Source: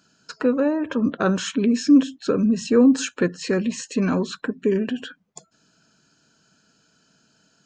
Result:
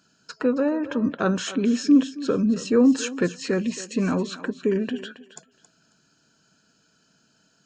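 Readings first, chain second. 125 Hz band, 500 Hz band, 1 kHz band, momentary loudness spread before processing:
-2.0 dB, -2.0 dB, -2.0 dB, 9 LU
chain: thinning echo 272 ms, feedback 21%, high-pass 370 Hz, level -13.5 dB; trim -2 dB

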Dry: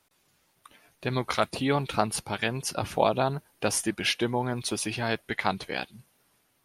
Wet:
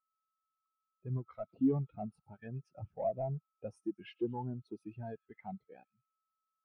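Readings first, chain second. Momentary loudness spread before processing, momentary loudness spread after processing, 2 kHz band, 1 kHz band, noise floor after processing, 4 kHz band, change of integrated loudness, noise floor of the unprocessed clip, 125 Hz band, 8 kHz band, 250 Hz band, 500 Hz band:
6 LU, 16 LU, -29.0 dB, -17.0 dB, under -85 dBFS, -31.5 dB, -11.0 dB, -70 dBFS, -6.5 dB, under -40 dB, -6.0 dB, -11.0 dB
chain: treble shelf 2.7 kHz -8.5 dB; feedback echo behind a high-pass 110 ms, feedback 70%, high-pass 2.6 kHz, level -9.5 dB; whistle 1.3 kHz -51 dBFS; overload inside the chain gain 24.5 dB; spectral contrast expander 2.5:1; trim +3.5 dB

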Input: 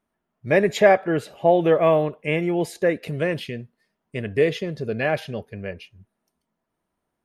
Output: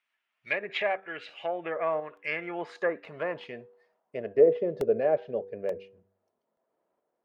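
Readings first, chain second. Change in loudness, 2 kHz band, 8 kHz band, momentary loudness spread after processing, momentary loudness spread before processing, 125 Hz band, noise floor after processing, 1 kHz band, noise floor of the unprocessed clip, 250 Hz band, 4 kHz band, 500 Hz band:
-8.0 dB, -7.0 dB, under -20 dB, 17 LU, 18 LU, -19.0 dB, -82 dBFS, -10.0 dB, -80 dBFS, -13.5 dB, no reading, -7.0 dB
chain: tracing distortion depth 0.047 ms; low-pass that closes with the level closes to 1 kHz, closed at -14 dBFS; de-hum 97.04 Hz, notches 5; tremolo saw up 1 Hz, depth 40%; band-pass sweep 2.5 kHz -> 510 Hz, 1.31–4.59 s; crackling interface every 0.88 s, samples 64, repeat, from 0.41 s; tape noise reduction on one side only encoder only; trim +6 dB

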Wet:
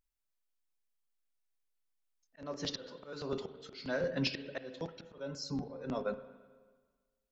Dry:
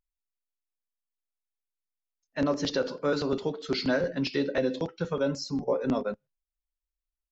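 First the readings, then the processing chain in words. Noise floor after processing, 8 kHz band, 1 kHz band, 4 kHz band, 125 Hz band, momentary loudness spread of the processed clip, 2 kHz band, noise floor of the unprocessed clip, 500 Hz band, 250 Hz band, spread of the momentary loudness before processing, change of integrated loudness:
-84 dBFS, no reading, -10.0 dB, -6.0 dB, -7.5 dB, 11 LU, -8.0 dB, under -85 dBFS, -11.0 dB, -11.5 dB, 4 LU, -10.0 dB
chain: dynamic bell 280 Hz, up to -5 dB, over -39 dBFS, Q 1.9; slow attack 708 ms; spring tank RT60 1.5 s, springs 36/55/59 ms, chirp 70 ms, DRR 12 dB; trim +1.5 dB

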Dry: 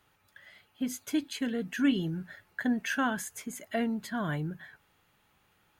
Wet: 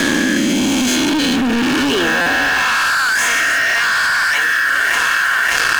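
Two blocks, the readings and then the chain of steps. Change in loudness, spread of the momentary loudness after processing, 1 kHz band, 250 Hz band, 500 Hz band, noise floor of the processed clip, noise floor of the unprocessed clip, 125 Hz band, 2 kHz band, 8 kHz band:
+18.5 dB, 2 LU, +21.0 dB, +13.5 dB, +15.5 dB, -16 dBFS, -69 dBFS, +7.5 dB, +27.0 dB, +22.0 dB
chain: reverse spectral sustain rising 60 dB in 2.37 s; high-pass sweep 66 Hz -> 1.6 kHz, 0.51–3.01 s; distance through air 66 m; thinning echo 579 ms, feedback 71%, high-pass 330 Hz, level -15 dB; overdrive pedal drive 16 dB, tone 5.7 kHz, clips at -10.5 dBFS; rotary cabinet horn 0.9 Hz; waveshaping leveller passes 5; dynamic bell 420 Hz, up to -5 dB, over -26 dBFS, Q 1.1; band-stop 2 kHz, Q 7.7; buffer glitch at 2.21 s, samples 256, times 8; level flattener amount 100%; trim -4.5 dB

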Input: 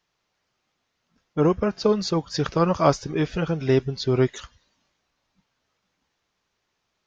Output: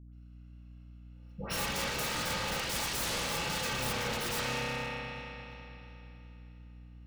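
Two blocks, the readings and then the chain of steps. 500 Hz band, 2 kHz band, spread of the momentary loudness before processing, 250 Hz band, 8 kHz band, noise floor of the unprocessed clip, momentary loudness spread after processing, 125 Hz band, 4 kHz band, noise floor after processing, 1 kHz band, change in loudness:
-16.5 dB, +2.5 dB, 5 LU, -17.0 dB, no reading, -77 dBFS, 21 LU, -14.5 dB, +0.5 dB, -51 dBFS, -8.0 dB, -10.0 dB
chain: bit-reversed sample order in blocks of 128 samples; three-band isolator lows -21 dB, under 280 Hz, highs -23 dB, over 5 kHz; spring tank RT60 3.3 s, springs 31 ms, chirp 80 ms, DRR -8 dB; wavefolder -30 dBFS; phase dispersion highs, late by 135 ms, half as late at 1.1 kHz; hum 60 Hz, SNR 17 dB; bass shelf 240 Hz +4.5 dB; modulated delay 117 ms, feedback 68%, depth 177 cents, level -17.5 dB

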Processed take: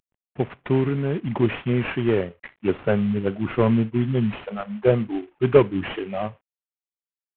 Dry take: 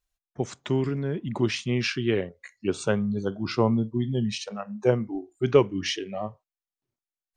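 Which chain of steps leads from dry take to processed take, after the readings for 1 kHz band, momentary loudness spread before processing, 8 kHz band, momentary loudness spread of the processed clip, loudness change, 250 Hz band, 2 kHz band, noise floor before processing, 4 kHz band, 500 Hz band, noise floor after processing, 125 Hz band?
+3.0 dB, 12 LU, under -40 dB, 11 LU, +3.5 dB, +4.0 dB, +2.0 dB, under -85 dBFS, -6.0 dB, +4.0 dB, under -85 dBFS, +4.0 dB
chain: CVSD coder 16 kbps; trim +5 dB

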